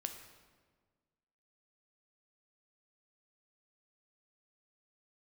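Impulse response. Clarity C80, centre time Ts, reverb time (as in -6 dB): 9.5 dB, 23 ms, 1.6 s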